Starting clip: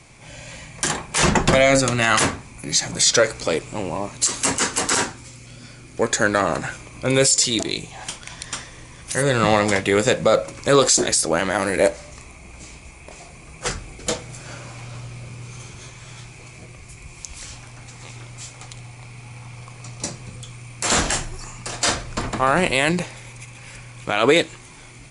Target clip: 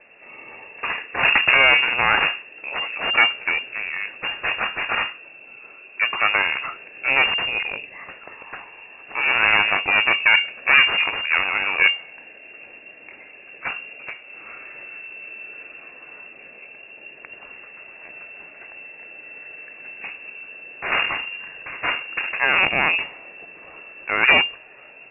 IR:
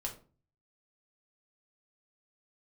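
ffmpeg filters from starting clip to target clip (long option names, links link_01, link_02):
-filter_complex "[0:a]aeval=exprs='0.794*(cos(1*acos(clip(val(0)/0.794,-1,1)))-cos(1*PI/2))+0.251*(cos(4*acos(clip(val(0)/0.794,-1,1)))-cos(4*PI/2))':channel_layout=same,lowpass=frequency=2400:width_type=q:width=0.5098,lowpass=frequency=2400:width_type=q:width=0.6013,lowpass=frequency=2400:width_type=q:width=0.9,lowpass=frequency=2400:width_type=q:width=2.563,afreqshift=-2800,asettb=1/sr,asplit=3[link_01][link_02][link_03];[link_01]atrim=end=14.064[link_04];[link_02]atrim=start=14.06:end=15.25,asetpts=PTS-STARTPTS,afade=type=in:duration=0.004:curve=qsin,afade=type=out:start_time=1.186:duration=0.004:curve=qsin,acompressor=threshold=-33dB:ratio=3[link_05];[link_03]atrim=start=15.246[link_06];[link_04][link_05]acrossfade=duration=0.004:curve1=hsin:curve2=qsin[link_07];[link_07][link_06]acrossfade=duration=0.004:curve1=qsin:curve2=hsin,volume=-1dB"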